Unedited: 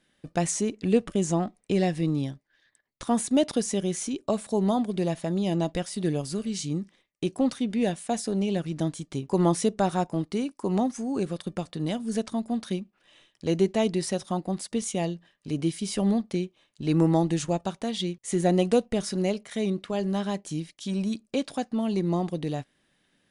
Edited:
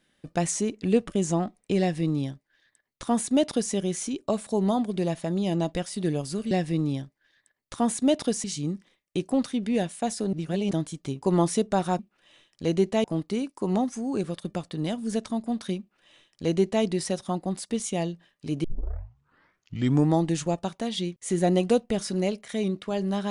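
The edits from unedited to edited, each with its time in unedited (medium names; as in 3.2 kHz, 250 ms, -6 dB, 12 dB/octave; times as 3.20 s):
1.80–3.73 s: copy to 6.51 s
8.40–8.78 s: reverse
12.81–13.86 s: copy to 10.06 s
15.66 s: tape start 1.50 s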